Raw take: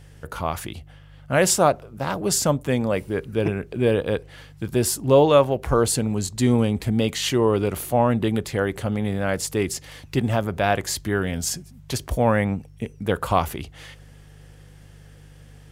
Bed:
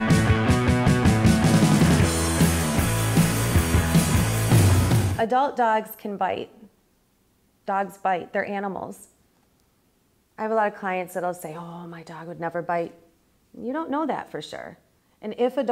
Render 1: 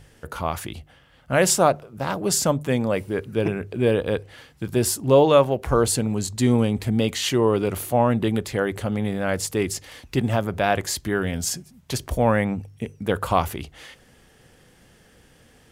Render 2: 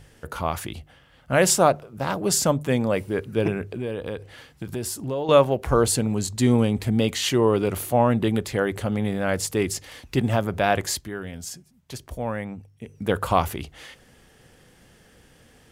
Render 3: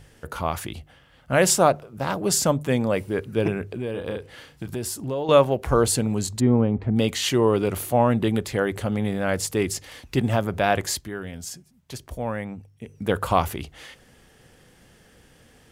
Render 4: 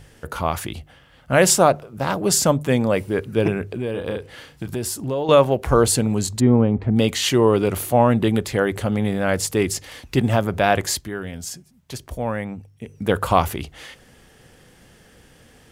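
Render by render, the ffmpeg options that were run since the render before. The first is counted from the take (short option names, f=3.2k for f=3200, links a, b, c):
-af "bandreject=f=50:t=h:w=4,bandreject=f=100:t=h:w=4,bandreject=f=150:t=h:w=4"
-filter_complex "[0:a]asettb=1/sr,asplit=3[a][b][c];[a]atrim=end=3.664[d];[b]atrim=start=3.66:end=5.29,asetpts=PTS-STARTPTS,afade=t=in:d=0.004:c=qsin,afade=t=out:st=1.626:d=0.004:c=qsin,acompressor=threshold=-28dB:ratio=3:attack=3.2:release=140:knee=1:detection=peak[e];[c]atrim=start=5.286[f];[d][e]acrossfade=d=0.004:c1=hsin:c2=qsin[g];[g][f]acrossfade=d=0.004:c1=qsin:c2=hsin,asplit=3[h][i][j];[h]atrim=end=11.13,asetpts=PTS-STARTPTS,afade=t=out:st=10.95:d=0.18:c=qua:silence=0.334965[k];[i]atrim=start=11.13:end=12.8,asetpts=PTS-STARTPTS,volume=-9.5dB[l];[j]atrim=start=12.8,asetpts=PTS-STARTPTS,afade=t=in:d=0.18:c=qua:silence=0.334965[m];[k][l][m]concat=n=3:v=0:a=1"
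-filter_complex "[0:a]asettb=1/sr,asplit=3[a][b][c];[a]atrim=end=3.914[d];[b]atrim=start=3.91:end=4.66,asetpts=PTS-STARTPTS,afade=t=in:d=0.004:c=qsin,afade=t=out:st=0.746:d=0.004:c=qsin,asplit=2[e][f];[f]adelay=34,volume=-5dB[g];[e][g]amix=inputs=2:normalize=0,atrim=end_sample=33075[h];[c]atrim=start=4.656[i];[d][h]acrossfade=d=0.004:c1=hsin:c2=qsin[j];[j][i]acrossfade=d=0.004:c1=qsin:c2=hsin,asplit=3[k][l][m];[k]afade=t=out:st=6.39:d=0.02[n];[l]lowpass=1.3k,afade=t=in:st=6.39:d=0.02,afade=t=out:st=6.95:d=0.02[o];[m]afade=t=in:st=6.95:d=0.02[p];[n][o][p]amix=inputs=3:normalize=0"
-af "volume=3.5dB,alimiter=limit=-2dB:level=0:latency=1"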